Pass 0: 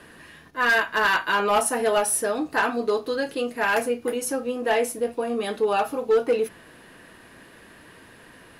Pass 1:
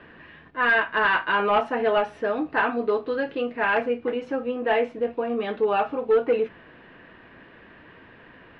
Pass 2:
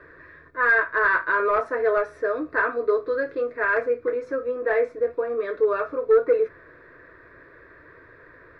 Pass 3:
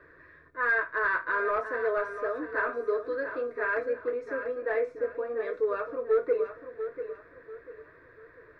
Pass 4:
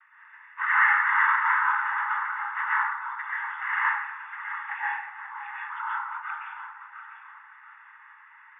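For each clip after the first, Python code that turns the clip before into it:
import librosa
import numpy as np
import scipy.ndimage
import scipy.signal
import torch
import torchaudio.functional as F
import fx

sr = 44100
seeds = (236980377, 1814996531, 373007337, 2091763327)

y1 = scipy.signal.sosfilt(scipy.signal.butter(4, 3000.0, 'lowpass', fs=sr, output='sos'), x)
y2 = fx.fixed_phaser(y1, sr, hz=800.0, stages=6)
y2 = y2 * 10.0 ** (2.5 / 20.0)
y3 = fx.echo_feedback(y2, sr, ms=692, feedback_pct=33, wet_db=-10.0)
y3 = y3 * 10.0 ** (-7.0 / 20.0)
y4 = fx.noise_vocoder(y3, sr, seeds[0], bands=16)
y4 = fx.brickwall_bandpass(y4, sr, low_hz=780.0, high_hz=3600.0)
y4 = fx.rev_plate(y4, sr, seeds[1], rt60_s=0.89, hf_ratio=0.55, predelay_ms=105, drr_db=-6.5)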